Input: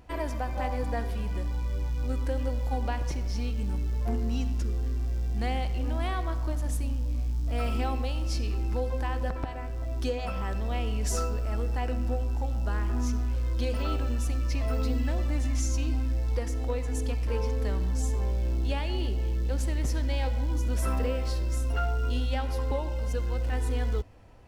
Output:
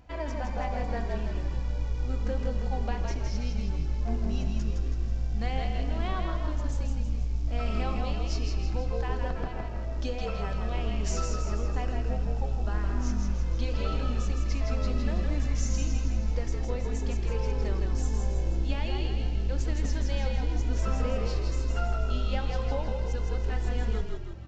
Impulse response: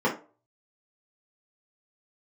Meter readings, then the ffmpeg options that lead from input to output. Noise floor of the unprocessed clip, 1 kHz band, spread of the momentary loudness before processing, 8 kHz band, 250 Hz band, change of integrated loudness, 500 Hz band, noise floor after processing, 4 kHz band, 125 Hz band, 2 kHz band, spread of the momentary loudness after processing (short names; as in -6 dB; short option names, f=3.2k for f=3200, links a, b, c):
-32 dBFS, -1.5 dB, 3 LU, -2.5 dB, -0.5 dB, -1.0 dB, -1.0 dB, -32 dBFS, -0.5 dB, -1.0 dB, -1.0 dB, 3 LU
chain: -filter_complex "[0:a]aresample=16000,aresample=44100,asplit=8[a][b][c][d][e][f][g][h];[b]adelay=162,afreqshift=-43,volume=-4dB[i];[c]adelay=324,afreqshift=-86,volume=-9.7dB[j];[d]adelay=486,afreqshift=-129,volume=-15.4dB[k];[e]adelay=648,afreqshift=-172,volume=-21dB[l];[f]adelay=810,afreqshift=-215,volume=-26.7dB[m];[g]adelay=972,afreqshift=-258,volume=-32.4dB[n];[h]adelay=1134,afreqshift=-301,volume=-38.1dB[o];[a][i][j][k][l][m][n][o]amix=inputs=8:normalize=0,asplit=2[p][q];[1:a]atrim=start_sample=2205[r];[q][r]afir=irnorm=-1:irlink=0,volume=-31.5dB[s];[p][s]amix=inputs=2:normalize=0,flanger=delay=1.3:depth=4.3:regen=-69:speed=0.57:shape=sinusoidal,volume=2dB"